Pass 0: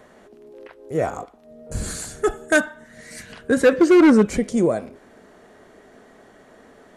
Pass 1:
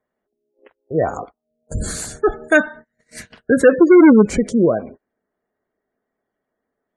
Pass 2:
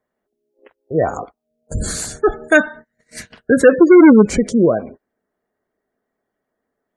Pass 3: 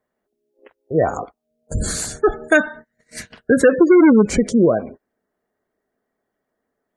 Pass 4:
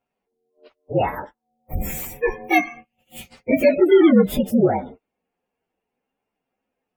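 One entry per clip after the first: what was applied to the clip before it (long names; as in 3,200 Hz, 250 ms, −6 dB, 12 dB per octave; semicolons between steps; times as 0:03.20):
noise gate −38 dBFS, range −33 dB; gate on every frequency bin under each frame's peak −25 dB strong; level +4 dB
dynamic equaliser 5,100 Hz, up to +3 dB, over −42 dBFS, Q 1.1; level +1.5 dB
downward compressor, threshold −8 dBFS, peak gain reduction 4 dB
partials spread apart or drawn together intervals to 119%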